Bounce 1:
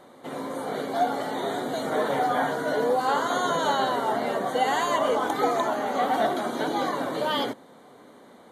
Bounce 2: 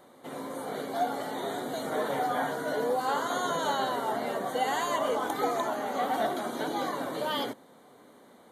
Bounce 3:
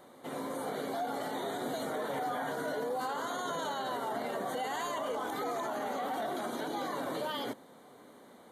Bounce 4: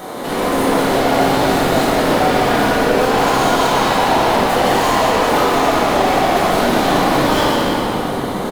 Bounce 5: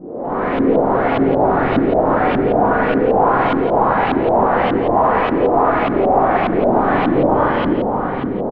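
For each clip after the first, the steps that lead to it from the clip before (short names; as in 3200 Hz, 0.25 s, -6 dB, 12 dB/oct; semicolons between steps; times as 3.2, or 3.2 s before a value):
high shelf 11000 Hz +11 dB; gain -5 dB
limiter -27.5 dBFS, peak gain reduction 11.5 dB
sample leveller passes 5; frequency-shifting echo 0.178 s, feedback 58%, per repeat -46 Hz, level -5 dB; reverb RT60 3.0 s, pre-delay 4 ms, DRR -7 dB; gain +5 dB
LFO low-pass saw up 1.7 Hz 270–3000 Hz; tape spacing loss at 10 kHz 25 dB; on a send: echo 0.171 s -9.5 dB; on the sum: gain -1.5 dB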